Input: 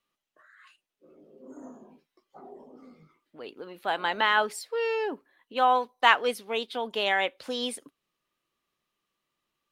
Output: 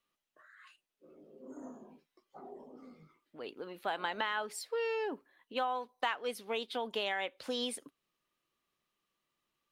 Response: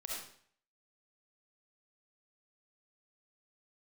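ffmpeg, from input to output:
-af "acompressor=threshold=-29dB:ratio=5,volume=-2.5dB"

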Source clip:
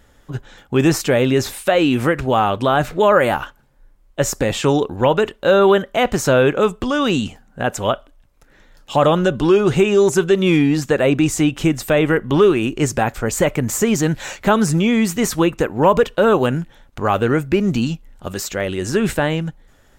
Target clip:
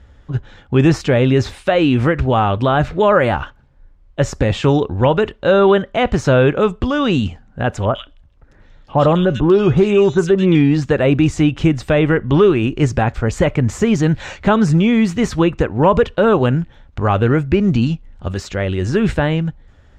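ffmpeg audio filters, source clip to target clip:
ffmpeg -i in.wav -filter_complex "[0:a]lowpass=4500,equalizer=frequency=70:width_type=o:width=1.8:gain=13,asettb=1/sr,asplit=3[link_01][link_02][link_03];[link_01]atrim=end=7.854[link_04];[link_02]atrim=start=7.85:end=10.55,asetpts=PTS-STARTPTS,afade=type=in:duration=0.004:curve=qsin,afade=type=out:start_time=2.696:duration=0.004:curve=qsin,acrossover=split=2000[link_05][link_06];[link_06]adelay=100[link_07];[link_05][link_07]amix=inputs=2:normalize=0,atrim=end_sample=119070[link_08];[link_03]atrim=start=10.546[link_09];[link_04][link_08]acrossfade=duration=0.004:curve1=hsin:curve2=qsin[link_10];[link_10][link_09]acrossfade=duration=0.004:curve1=qsin:curve2=hsin" out.wav

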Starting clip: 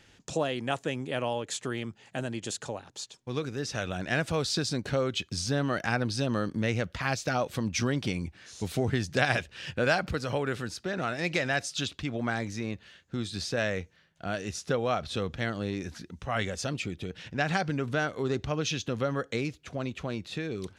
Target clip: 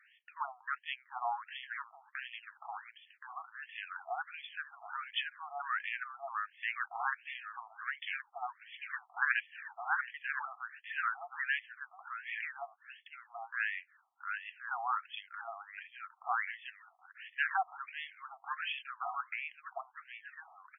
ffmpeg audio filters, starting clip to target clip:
ffmpeg -i in.wav -filter_complex "[0:a]tiltshelf=frequency=1400:gain=3,asplit=2[link_01][link_02];[link_02]aecho=0:1:1073:0.398[link_03];[link_01][link_03]amix=inputs=2:normalize=0,aeval=exprs='0.398*(cos(1*acos(clip(val(0)/0.398,-1,1)))-cos(1*PI/2))+0.0126*(cos(8*acos(clip(val(0)/0.398,-1,1)))-cos(8*PI/2))':channel_layout=same,asettb=1/sr,asplit=3[link_04][link_05][link_06];[link_04]atrim=end=12.734[link_07];[link_05]atrim=start=12.73:end=13.38,asetpts=PTS-STARTPTS,afade=type=in:duration=0.004:curve=qsin,afade=type=out:start_time=0.646:duration=0.004:curve=qsin,lowshelf=frequency=600:width_type=q:width=3:gain=10.5[link_08];[link_06]atrim=start=13.376[link_09];[link_07][link_08]acrossfade=duration=0.004:curve1=hsin:curve2=qsin[link_10];[link_10][link_09]acrossfade=duration=0.004:curve1=qsin:curve2=hsin,afftfilt=real='re*between(b*sr/1024,920*pow(2500/920,0.5+0.5*sin(2*PI*1.4*pts/sr))/1.41,920*pow(2500/920,0.5+0.5*sin(2*PI*1.4*pts/sr))*1.41)':imag='im*between(b*sr/1024,920*pow(2500/920,0.5+0.5*sin(2*PI*1.4*pts/sr))/1.41,920*pow(2500/920,0.5+0.5*sin(2*PI*1.4*pts/sr))*1.41)':win_size=1024:overlap=0.75" out.wav

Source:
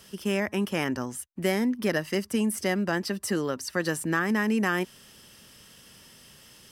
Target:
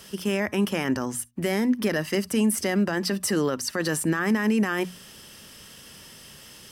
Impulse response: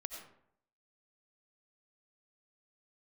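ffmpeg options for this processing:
-filter_complex "[0:a]alimiter=limit=-21dB:level=0:latency=1:release=23,bandreject=frequency=60:width_type=h:width=6,bandreject=frequency=120:width_type=h:width=6,bandreject=frequency=180:width_type=h:width=6,bandreject=frequency=240:width_type=h:width=6,asplit=2[link_01][link_02];[1:a]atrim=start_sample=2205,atrim=end_sample=6174,asetrate=79380,aresample=44100[link_03];[link_02][link_03]afir=irnorm=-1:irlink=0,volume=-11dB[link_04];[link_01][link_04]amix=inputs=2:normalize=0,volume=5dB"

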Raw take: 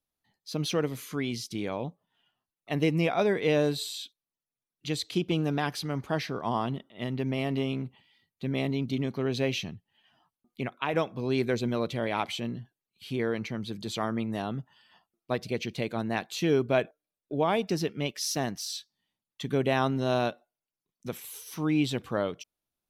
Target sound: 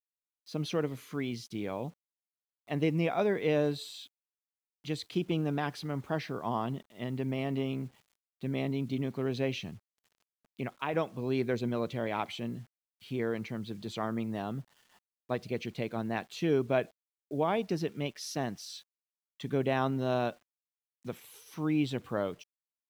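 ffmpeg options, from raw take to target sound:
ffmpeg -i in.wav -af "highpass=53,highshelf=frequency=4000:gain=-9.5,acrusher=bits=9:mix=0:aa=0.000001,volume=-3dB" out.wav

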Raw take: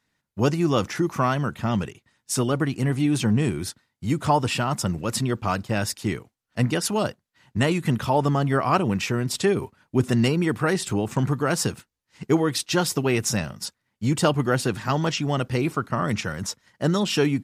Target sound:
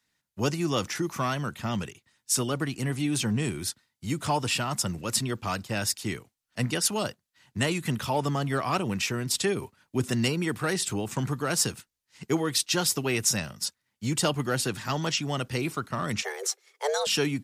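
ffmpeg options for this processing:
ffmpeg -i in.wav -filter_complex "[0:a]highshelf=frequency=2200:gain=9.5,acrossover=split=150|820|1800[link_01][link_02][link_03][link_04];[link_03]volume=24dB,asoftclip=hard,volume=-24dB[link_05];[link_01][link_02][link_05][link_04]amix=inputs=4:normalize=0,asettb=1/sr,asplit=3[link_06][link_07][link_08];[link_06]atrim=end=16.224[link_09];[link_07]atrim=start=16.22:end=17.07,asetpts=PTS-STARTPTS,afade=type=in:duration=0.004:curve=qsin,afade=type=out:start_time=0.846:duration=0.004:curve=qsin,afreqshift=290[link_10];[link_08]atrim=start=17.066[link_11];[link_09][link_10]acrossfade=duration=0.004:curve1=hsin:curve2=qsin[link_12];[link_12][link_11]acrossfade=duration=0.004:curve1=qsin:curve2=hsin,volume=-6.5dB" out.wav

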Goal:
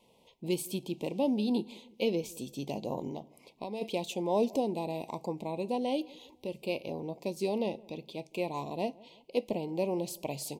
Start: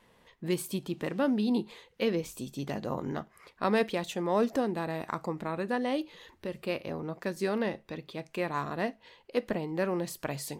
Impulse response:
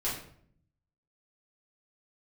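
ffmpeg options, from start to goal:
-filter_complex "[0:a]lowshelf=frequency=98:gain=-11.5,asplit=3[link_01][link_02][link_03];[link_01]afade=type=out:start_time=3.07:duration=0.02[link_04];[link_02]acompressor=threshold=-34dB:ratio=10,afade=type=in:start_time=3.07:duration=0.02,afade=type=out:start_time=3.81:duration=0.02[link_05];[link_03]afade=type=in:start_time=3.81:duration=0.02[link_06];[link_04][link_05][link_06]amix=inputs=3:normalize=0,asuperstop=centerf=1500:order=8:qfactor=1.1,asplit=2[link_07][link_08];[link_08]adelay=168,lowpass=frequency=1100:poles=1,volume=-22.5dB,asplit=2[link_09][link_10];[link_10]adelay=168,lowpass=frequency=1100:poles=1,volume=0.5,asplit=2[link_11][link_12];[link_12]adelay=168,lowpass=frequency=1100:poles=1,volume=0.5[link_13];[link_07][link_09][link_11][link_13]amix=inputs=4:normalize=0"

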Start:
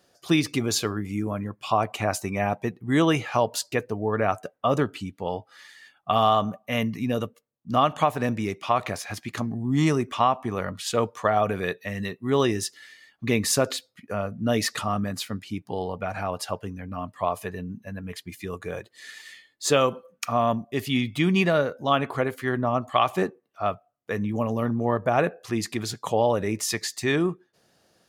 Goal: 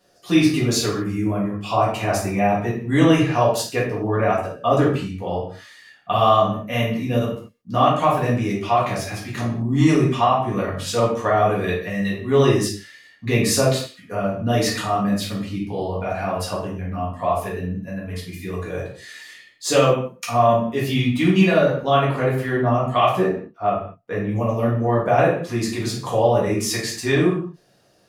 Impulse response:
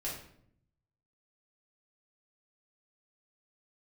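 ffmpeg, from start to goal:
-filter_complex "[0:a]asettb=1/sr,asplit=3[link_01][link_02][link_03];[link_01]atrim=end=23.174[link_04];[link_02]atrim=start=23.17:end=24.28,asetpts=PTS-STARTPTS,afade=type=in:duration=0.004:curve=qsin,afade=type=out:start_time=1.106:duration=0.004:curve=qsin,highshelf=frequency=3700:gain=-11.5[link_05];[link_03]atrim=start=24.276[link_06];[link_04][link_05]acrossfade=duration=0.004:curve1=hsin:curve2=qsin[link_07];[link_07][link_06]acrossfade=duration=0.004:curve1=qsin:curve2=hsin[link_08];[1:a]atrim=start_sample=2205,afade=type=out:start_time=0.29:duration=0.01,atrim=end_sample=13230[link_09];[link_08][link_09]afir=irnorm=-1:irlink=0,volume=2.5dB"

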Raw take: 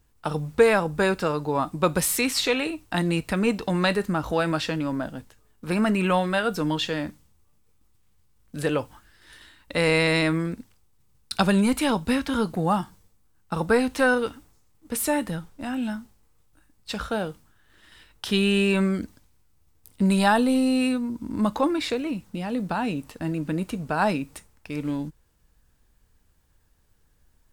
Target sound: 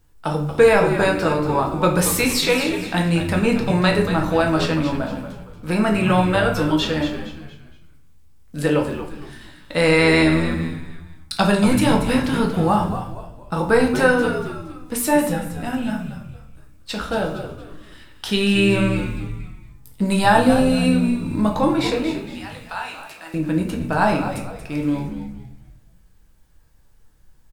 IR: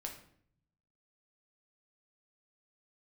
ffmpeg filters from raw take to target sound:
-filter_complex "[0:a]asettb=1/sr,asplit=3[link_01][link_02][link_03];[link_01]atrim=end=22.114[link_04];[link_02]atrim=start=22.11:end=23.34,asetpts=PTS-STARTPTS,afade=type=in:duration=0.004:curve=qsin,afade=type=out:start_time=1.226:duration=0.004:curve=qsin,highpass=1200[link_05];[link_03]atrim=start=23.336[link_06];[link_04][link_05]acrossfade=duration=0.004:curve1=hsin:curve2=qsin[link_07];[link_07][link_06]acrossfade=duration=0.004:curve1=qsin:curve2=hsin,asplit=5[link_08][link_09][link_10][link_11][link_12];[link_09]adelay=232,afreqshift=-80,volume=-10dB[link_13];[link_10]adelay=464,afreqshift=-160,volume=-18.6dB[link_14];[link_11]adelay=696,afreqshift=-240,volume=-27.3dB[link_15];[link_12]adelay=928,afreqshift=-320,volume=-35.9dB[link_16];[link_08][link_13][link_14][link_15][link_16]amix=inputs=5:normalize=0[link_17];[1:a]atrim=start_sample=2205[link_18];[link_17][link_18]afir=irnorm=-1:irlink=0,volume=6.5dB"

